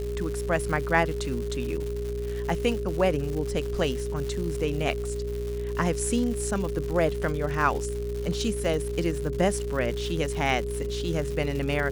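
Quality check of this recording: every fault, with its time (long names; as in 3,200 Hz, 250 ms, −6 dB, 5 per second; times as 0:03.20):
mains buzz 60 Hz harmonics 10 −33 dBFS
surface crackle 240 per second −32 dBFS
whistle 410 Hz −31 dBFS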